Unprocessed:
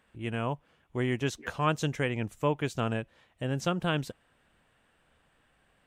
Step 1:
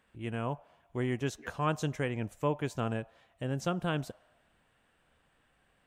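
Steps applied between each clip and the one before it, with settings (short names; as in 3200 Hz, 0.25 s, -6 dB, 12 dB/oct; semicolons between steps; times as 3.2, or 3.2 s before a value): dynamic EQ 2900 Hz, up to -4 dB, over -46 dBFS, Q 0.83; on a send at -10.5 dB: ladder high-pass 620 Hz, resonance 65% + reverb RT60 1.1 s, pre-delay 3 ms; on the sum: gain -2.5 dB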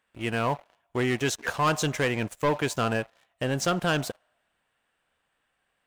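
low shelf 380 Hz -11 dB; sample leveller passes 3; gain +3 dB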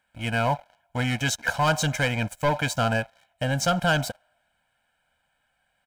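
comb 1.3 ms, depth 99%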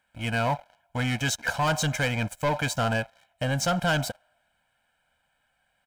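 soft clip -17.5 dBFS, distortion -17 dB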